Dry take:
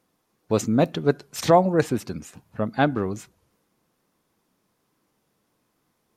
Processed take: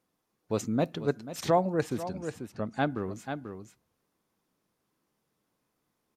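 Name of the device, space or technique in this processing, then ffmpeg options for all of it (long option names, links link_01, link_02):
ducked delay: -filter_complex "[0:a]asettb=1/sr,asplit=3[link_01][link_02][link_03];[link_01]atrim=end=2.034[link_04];[link_02]atrim=start=2.03:end=2.78,asetpts=PTS-STARTPTS,afade=type=in:duration=0.004:curve=qsin,afade=type=out:start_time=0.746:duration=0.004:curve=qsin,lowpass=frequency=10000:width=0.5412,lowpass=frequency=10000:width=1.3066[link_05];[link_03]atrim=start=2.776[link_06];[link_04][link_05]acrossfade=duration=0.004:curve1=hsin:curve2=qsin[link_07];[link_07][link_06]acrossfade=duration=0.004:curve1=qsin:curve2=hsin,asplit=3[link_08][link_09][link_10];[link_09]adelay=489,volume=-7.5dB[link_11];[link_10]apad=whole_len=293457[link_12];[link_11][link_12]sidechaincompress=threshold=-25dB:ratio=8:attack=5.7:release=353[link_13];[link_08][link_13]amix=inputs=2:normalize=0,volume=-8dB"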